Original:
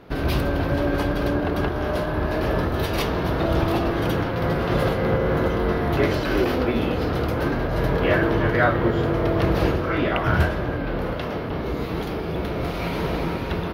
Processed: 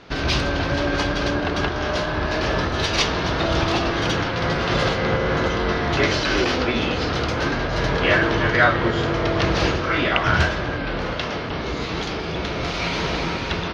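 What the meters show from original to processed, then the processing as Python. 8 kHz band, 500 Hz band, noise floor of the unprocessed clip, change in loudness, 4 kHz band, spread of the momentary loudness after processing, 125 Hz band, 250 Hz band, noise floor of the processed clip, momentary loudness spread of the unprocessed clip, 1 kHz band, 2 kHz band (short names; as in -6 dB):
n/a, -0.5 dB, -28 dBFS, +1.5 dB, +10.0 dB, 8 LU, -1.0 dB, -1.0 dB, -27 dBFS, 7 LU, +3.0 dB, +6.0 dB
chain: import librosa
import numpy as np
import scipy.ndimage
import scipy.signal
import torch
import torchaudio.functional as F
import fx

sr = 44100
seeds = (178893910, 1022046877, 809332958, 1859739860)

y = fx.curve_eq(x, sr, hz=(470.0, 6400.0, 13000.0), db=(0, 14, -21))
y = F.gain(torch.from_numpy(y), -1.0).numpy()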